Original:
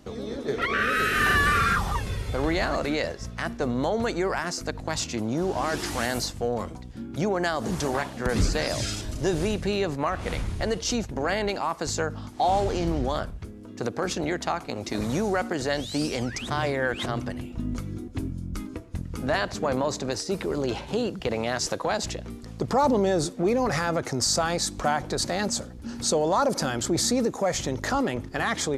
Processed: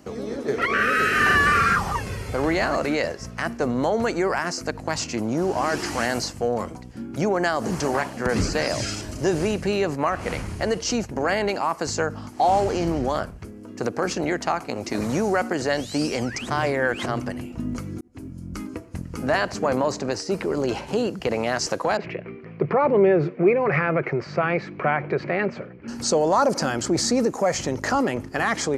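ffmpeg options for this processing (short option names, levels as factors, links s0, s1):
-filter_complex "[0:a]asettb=1/sr,asplit=3[s0][s1][s2];[s0]atrim=end=19.924[s3];[s1]atrim=start=19.92:end=20.57,asetpts=PTS-STARTPTS,afade=t=in:d=0.004:c=qsin,afade=t=out:st=0.646:d=0.004:c=qsin,highshelf=f=9800:g=-11[s4];[s2]atrim=start=20.566[s5];[s3][s4]acrossfade=d=0.004:c1=hsin:c2=qsin[s6];[s6][s5]acrossfade=d=0.004:c1=qsin:c2=hsin,asettb=1/sr,asplit=3[s7][s8][s9];[s7]atrim=end=21.974[s10];[s8]atrim=start=21.97:end=25.88,asetpts=PTS-STARTPTS,afade=t=in:d=0.004:c=qsin,afade=t=out:st=3.906:d=0.004:c=qsin,highpass=140,equalizer=f=150:t=q:w=4:g=9,equalizer=f=250:t=q:w=4:g=-9,equalizer=f=390:t=q:w=4:g=6,equalizer=f=830:t=q:w=4:g=-6,equalizer=f=2300:t=q:w=4:g=10,lowpass=f=2600:w=0.5412,lowpass=f=2600:w=1.3066[s11];[s9]atrim=start=25.876[s12];[s10][s11]acrossfade=d=0.004:c1=hsin:c2=qsin[s13];[s13][s12]acrossfade=d=0.004:c1=qsin:c2=hsin,asplit=2[s14][s15];[s14]atrim=end=18.01,asetpts=PTS-STARTPTS,afade=t=out:st=18.006:d=0.004:c=hsin[s16];[s15]atrim=start=18.01,asetpts=PTS-STARTPTS,afade=t=in:d=0.56[s17];[s16][s17]concat=n=2:v=0:a=1,highpass=f=130:p=1,acrossover=split=7700[s18][s19];[s19]acompressor=threshold=0.00282:ratio=4:attack=1:release=60[s20];[s18][s20]amix=inputs=2:normalize=0,equalizer=f=3600:t=o:w=0.25:g=-11.5,volume=1.58"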